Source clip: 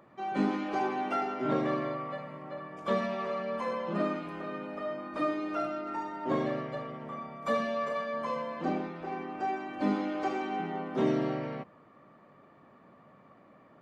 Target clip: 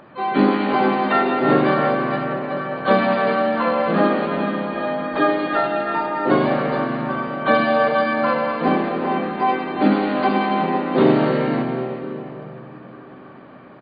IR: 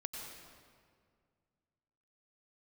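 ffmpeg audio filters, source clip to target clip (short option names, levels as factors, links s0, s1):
-filter_complex "[0:a]asplit=2[s0][s1];[s1]adelay=93,lowpass=f=2900:p=1,volume=0.15,asplit=2[s2][s3];[s3]adelay=93,lowpass=f=2900:p=1,volume=0.4,asplit=2[s4][s5];[s5]adelay=93,lowpass=f=2900:p=1,volume=0.4[s6];[s0][s2][s4][s6]amix=inputs=4:normalize=0,asplit=2[s7][s8];[1:a]atrim=start_sample=2205,asetrate=23373,aresample=44100[s9];[s8][s9]afir=irnorm=-1:irlink=0,volume=0.891[s10];[s7][s10]amix=inputs=2:normalize=0,asplit=2[s11][s12];[s12]asetrate=58866,aresample=44100,atempo=0.749154,volume=0.501[s13];[s11][s13]amix=inputs=2:normalize=0,volume=2.11" -ar 16000 -c:a mp2 -b:a 48k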